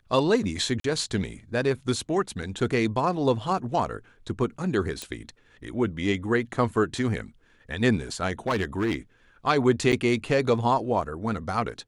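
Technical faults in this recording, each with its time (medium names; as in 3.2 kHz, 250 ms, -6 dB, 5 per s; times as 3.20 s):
0.80–0.84 s: dropout 43 ms
2.42–2.43 s: dropout 5.4 ms
5.02 s: pop -16 dBFS
8.47–8.94 s: clipped -20.5 dBFS
9.92–9.93 s: dropout 7 ms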